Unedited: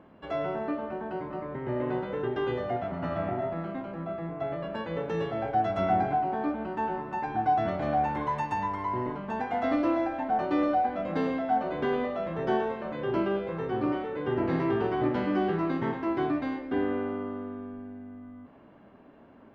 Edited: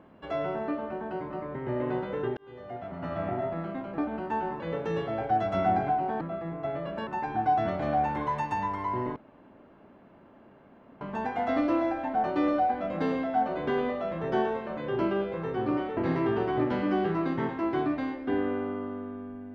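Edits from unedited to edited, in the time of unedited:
2.37–3.34 s: fade in
3.98–4.84 s: swap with 6.45–7.07 s
9.16 s: insert room tone 1.85 s
14.12–14.41 s: delete

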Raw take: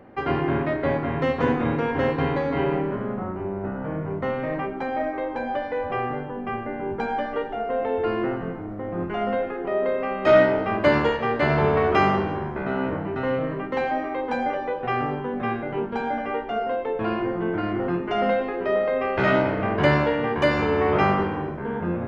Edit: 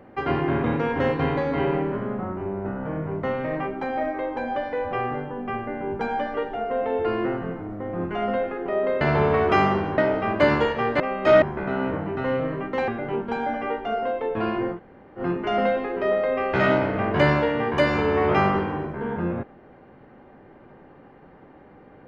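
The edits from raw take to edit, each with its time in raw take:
0.64–1.63 s: delete
10.00–10.42 s: swap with 11.44–12.41 s
13.87–15.52 s: delete
17.39–17.84 s: room tone, crossfade 0.10 s

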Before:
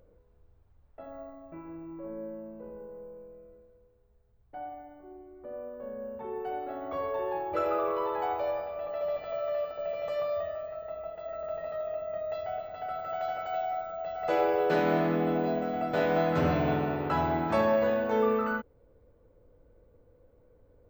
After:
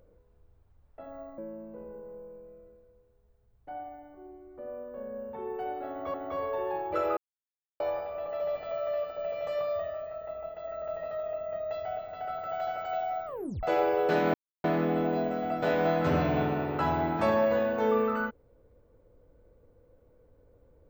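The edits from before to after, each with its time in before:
1.38–2.24 s: delete
6.75–7.00 s: loop, 2 plays
7.78–8.41 s: mute
13.87 s: tape stop 0.37 s
14.95 s: insert silence 0.30 s

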